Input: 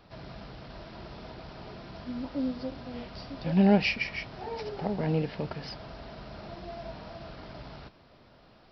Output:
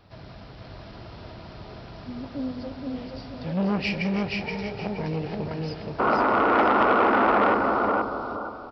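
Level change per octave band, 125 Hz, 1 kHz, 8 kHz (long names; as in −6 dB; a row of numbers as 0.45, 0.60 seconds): +1.0 dB, +17.0 dB, can't be measured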